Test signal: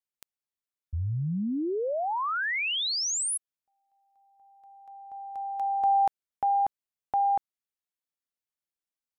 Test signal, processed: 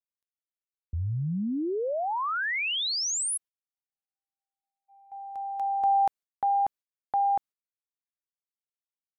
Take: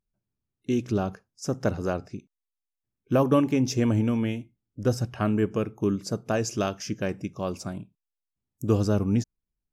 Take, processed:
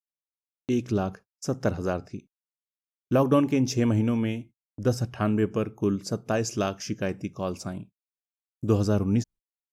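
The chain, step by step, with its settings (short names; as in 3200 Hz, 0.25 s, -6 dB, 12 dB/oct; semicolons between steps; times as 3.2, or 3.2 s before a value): gate -45 dBFS, range -41 dB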